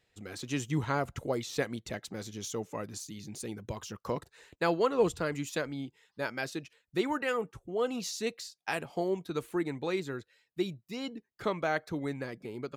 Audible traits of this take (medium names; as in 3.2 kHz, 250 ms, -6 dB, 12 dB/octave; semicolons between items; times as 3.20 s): noise floor -80 dBFS; spectral tilt -5.0 dB/octave